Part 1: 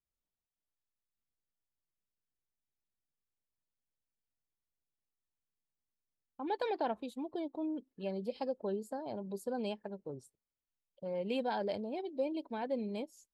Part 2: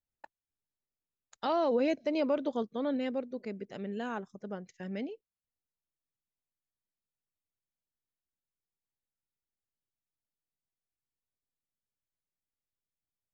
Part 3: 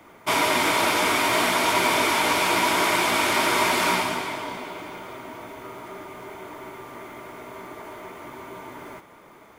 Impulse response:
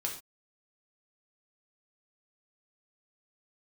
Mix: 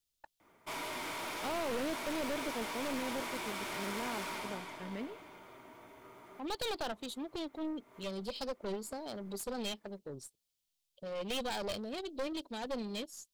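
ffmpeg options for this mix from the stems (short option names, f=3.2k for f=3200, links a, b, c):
-filter_complex "[0:a]highshelf=f=2.4k:t=q:w=1.5:g=11,volume=-0.5dB,asplit=2[a][b];[1:a]volume=-5dB[c];[2:a]volume=20.5dB,asoftclip=hard,volume=-20.5dB,adelay=400,volume=-16.5dB[d];[b]apad=whole_len=440334[e];[d][e]sidechaincompress=threshold=-51dB:ratio=8:attack=43:release=265[f];[a][c][f]amix=inputs=3:normalize=0,asoftclip=type=tanh:threshold=-28.5dB,aeval=exprs='0.0376*(cos(1*acos(clip(val(0)/0.0376,-1,1)))-cos(1*PI/2))+0.0188*(cos(2*acos(clip(val(0)/0.0376,-1,1)))-cos(2*PI/2))+0.00266*(cos(8*acos(clip(val(0)/0.0376,-1,1)))-cos(8*PI/2))':c=same,asoftclip=type=hard:threshold=-29.5dB"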